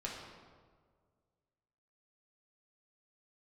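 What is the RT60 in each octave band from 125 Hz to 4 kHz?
2.2, 1.9, 1.9, 1.6, 1.2, 1.0 seconds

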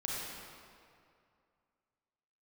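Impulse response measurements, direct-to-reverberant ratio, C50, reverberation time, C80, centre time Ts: −5.0 dB, −3.5 dB, 2.4 s, −1.0 dB, 146 ms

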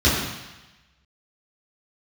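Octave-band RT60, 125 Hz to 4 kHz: 1.1, 1.0, 0.95, 1.1, 1.2, 1.2 seconds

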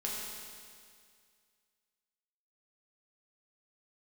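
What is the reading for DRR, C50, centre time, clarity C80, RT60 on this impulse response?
−5.0 dB, −1.0 dB, 118 ms, 0.5 dB, 2.1 s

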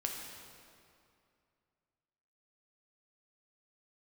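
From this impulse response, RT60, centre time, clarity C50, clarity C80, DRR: 2.4 s, 81 ms, 2.5 dB, 3.5 dB, 0.5 dB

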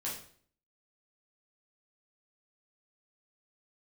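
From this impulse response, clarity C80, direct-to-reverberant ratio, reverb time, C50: 9.5 dB, −6.5 dB, 0.55 s, 5.0 dB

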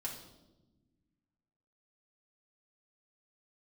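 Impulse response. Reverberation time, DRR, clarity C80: 1.1 s, −4.0 dB, 9.5 dB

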